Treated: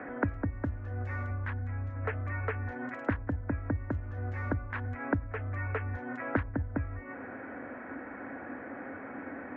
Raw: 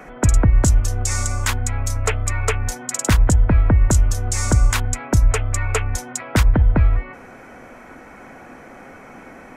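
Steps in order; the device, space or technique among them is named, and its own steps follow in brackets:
0:01.30–0:01.90: low-shelf EQ 150 Hz +8.5 dB
bass amplifier (downward compressor 6 to 1, threshold −25 dBFS, peak gain reduction 14.5 dB; loudspeaker in its box 84–2,100 Hz, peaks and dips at 89 Hz +6 dB, 160 Hz −7 dB, 280 Hz +10 dB, 540 Hz +4 dB, 1,700 Hz +8 dB)
level −4.5 dB

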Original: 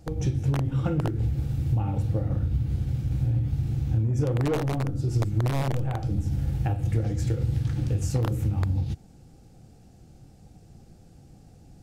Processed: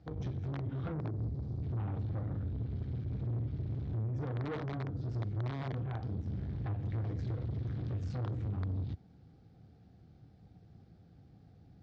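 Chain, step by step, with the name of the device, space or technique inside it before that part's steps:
0:00.92–0:01.63: flat-topped bell 2,200 Hz −12 dB
guitar amplifier (tube saturation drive 29 dB, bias 0.55; bass and treble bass +5 dB, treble −1 dB; loudspeaker in its box 99–4,100 Hz, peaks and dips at 140 Hz −6 dB, 220 Hz −5 dB, 330 Hz −4 dB, 540 Hz −5 dB, 860 Hz −4 dB, 2,700 Hz −7 dB)
level −3.5 dB

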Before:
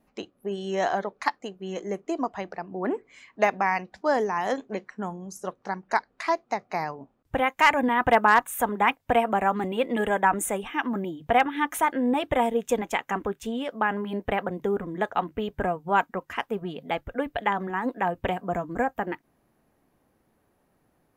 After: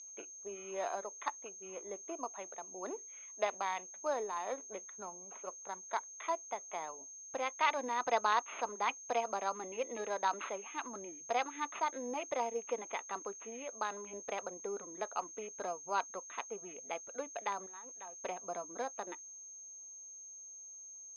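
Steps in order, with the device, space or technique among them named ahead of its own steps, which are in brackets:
0:17.66–0:18.24: first-order pre-emphasis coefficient 0.8
toy sound module (linearly interpolated sample-rate reduction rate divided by 8×; switching amplifier with a slow clock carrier 6,400 Hz; loudspeaker in its box 560–4,800 Hz, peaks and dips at 790 Hz −6 dB, 1,700 Hz −9 dB, 2,500 Hz +4 dB, 3,900 Hz +4 dB)
level −7 dB

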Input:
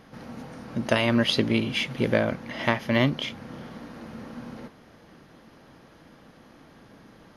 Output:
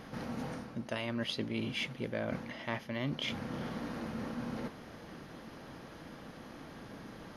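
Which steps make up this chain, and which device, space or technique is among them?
compression on the reversed sound (reversed playback; downward compressor 5 to 1, threshold −38 dBFS, peak gain reduction 19.5 dB; reversed playback)
level +3 dB

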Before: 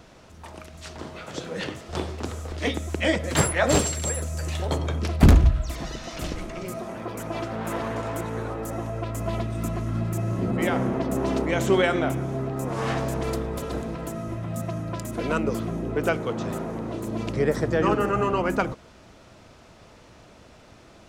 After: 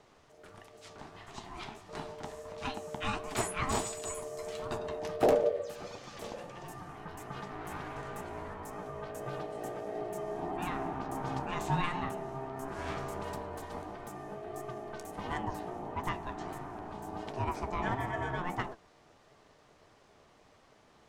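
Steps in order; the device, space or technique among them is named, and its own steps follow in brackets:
alien voice (ring modulation 530 Hz; flanger 1.5 Hz, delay 6.8 ms, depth 8.1 ms, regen +62%)
level −4.5 dB

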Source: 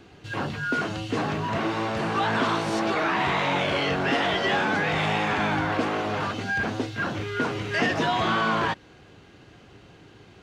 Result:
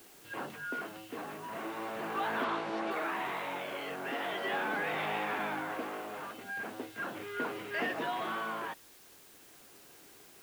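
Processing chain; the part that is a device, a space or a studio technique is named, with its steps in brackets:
shortwave radio (band-pass filter 280–3,000 Hz; amplitude tremolo 0.4 Hz, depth 46%; white noise bed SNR 20 dB)
0:02.44–0:02.91: low-pass filter 7,000 Hz 12 dB per octave
level −8 dB

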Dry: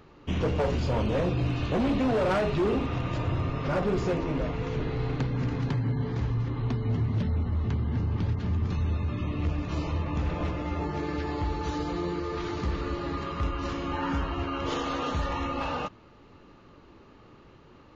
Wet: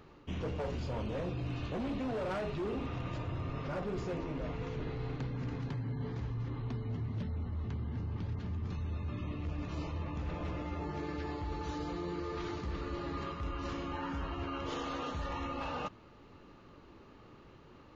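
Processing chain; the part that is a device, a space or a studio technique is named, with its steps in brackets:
compression on the reversed sound (reversed playback; downward compressor 5 to 1, threshold −32 dBFS, peak gain reduction 8 dB; reversed playback)
level −3 dB

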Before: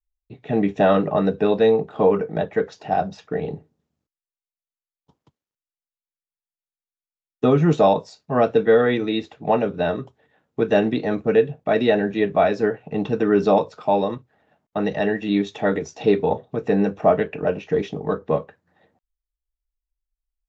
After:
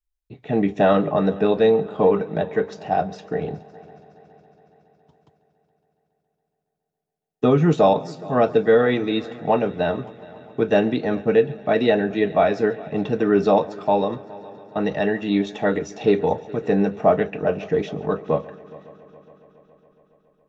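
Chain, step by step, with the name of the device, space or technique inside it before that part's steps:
multi-head tape echo (echo machine with several playback heads 139 ms, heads first and third, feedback 66%, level −22 dB; tape wow and flutter 15 cents)

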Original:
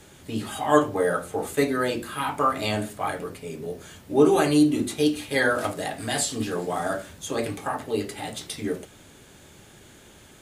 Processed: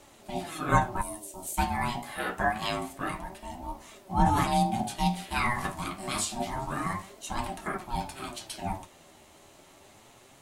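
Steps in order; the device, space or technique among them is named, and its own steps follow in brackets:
0:01.01–0:01.58: drawn EQ curve 150 Hz 0 dB, 1,400 Hz −28 dB, 2,300 Hz −7 dB, 8,000 Hz +8 dB
alien voice (ring modulation 480 Hz; flanger 0.27 Hz, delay 3.3 ms, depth 9.9 ms, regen +47%)
level +2 dB

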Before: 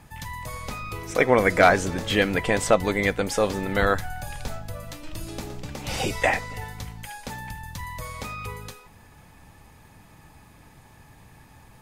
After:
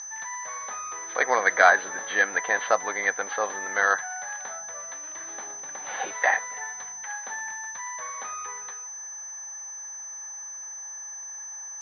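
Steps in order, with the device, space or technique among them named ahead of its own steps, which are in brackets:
toy sound module (linearly interpolated sample-rate reduction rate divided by 4×; switching amplifier with a slow clock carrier 6,100 Hz; loudspeaker in its box 730–4,800 Hz, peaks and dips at 770 Hz +4 dB, 1,100 Hz +3 dB, 1,700 Hz +10 dB, 2,600 Hz −9 dB, 4,000 Hz +6 dB)
level −1 dB

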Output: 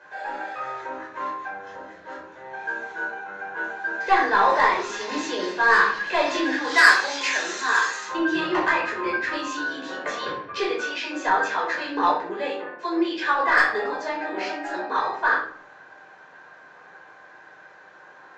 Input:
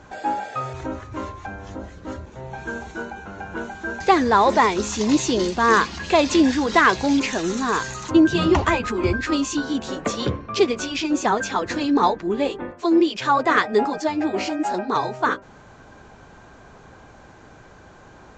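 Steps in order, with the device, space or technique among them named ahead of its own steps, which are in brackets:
intercom (band-pass filter 490–4,900 Hz; parametric band 1,700 Hz +11 dB 0.42 octaves; soft clipping −7 dBFS, distortion −16 dB)
0:06.64–0:08.05: RIAA equalisation recording
rectangular room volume 730 cubic metres, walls furnished, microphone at 5.1 metres
level −9 dB

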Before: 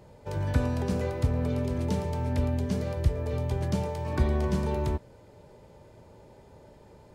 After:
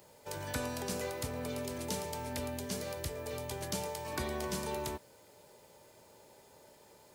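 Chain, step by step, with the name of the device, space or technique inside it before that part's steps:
turntable without a phono preamp (RIAA equalisation recording; white noise bed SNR 35 dB)
level −3.5 dB

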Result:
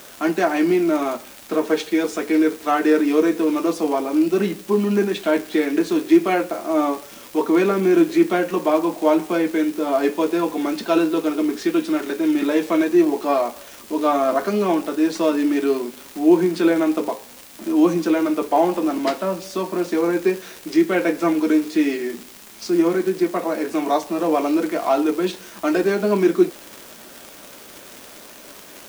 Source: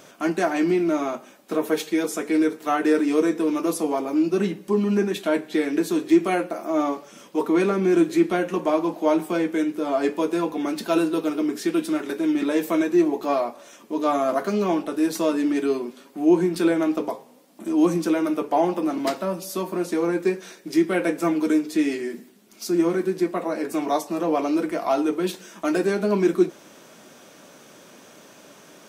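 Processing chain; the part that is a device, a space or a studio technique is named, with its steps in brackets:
78 rpm shellac record (band-pass filter 180–5,500 Hz; surface crackle 140 per second −30 dBFS; white noise bed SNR 25 dB)
level +3.5 dB

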